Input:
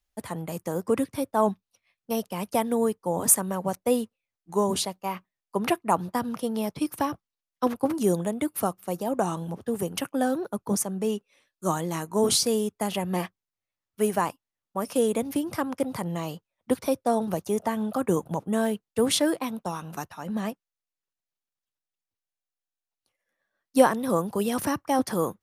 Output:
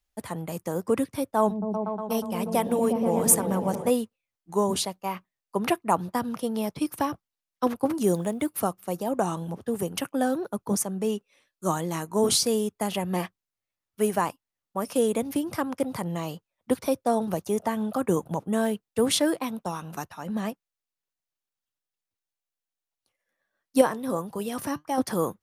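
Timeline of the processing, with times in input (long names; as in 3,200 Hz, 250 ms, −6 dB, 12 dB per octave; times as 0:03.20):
0:01.38–0:03.90: echo whose low-pass opens from repeat to repeat 120 ms, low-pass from 200 Hz, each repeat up 1 octave, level 0 dB
0:08.03–0:08.61: one scale factor per block 7 bits
0:23.81–0:24.98: flanger 1.8 Hz, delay 5.9 ms, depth 1.9 ms, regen +72%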